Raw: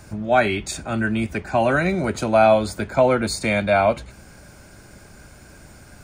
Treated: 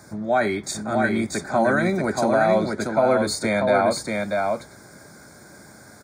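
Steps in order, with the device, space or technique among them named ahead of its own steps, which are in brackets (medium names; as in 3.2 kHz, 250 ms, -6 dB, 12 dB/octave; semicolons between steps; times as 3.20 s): PA system with an anti-feedback notch (high-pass 150 Hz 12 dB/octave; Butterworth band-stop 2.8 kHz, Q 2.1; peak limiter -11 dBFS, peak gain reduction 6 dB); 2.63–3.05 s: Chebyshev low-pass 3 kHz, order 2; delay 635 ms -3.5 dB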